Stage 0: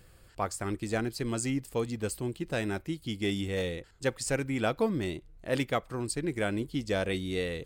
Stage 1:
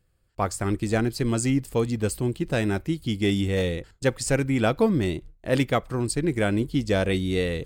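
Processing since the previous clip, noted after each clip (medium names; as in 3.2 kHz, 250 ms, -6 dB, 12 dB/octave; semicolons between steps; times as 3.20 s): gate with hold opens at -44 dBFS; bass shelf 280 Hz +5.5 dB; trim +5 dB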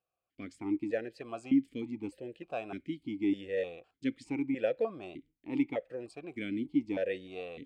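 stepped vowel filter 3.3 Hz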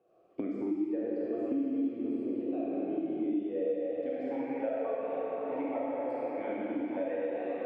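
algorithmic reverb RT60 4.3 s, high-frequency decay 0.7×, pre-delay 0 ms, DRR -9 dB; band-pass sweep 370 Hz -> 850 Hz, 3.40–4.51 s; three bands compressed up and down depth 100%; trim -2.5 dB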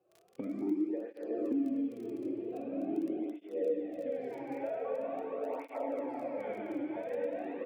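crackle 16 per s -40 dBFS; delay 278 ms -16 dB; cancelling through-zero flanger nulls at 0.44 Hz, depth 4.5 ms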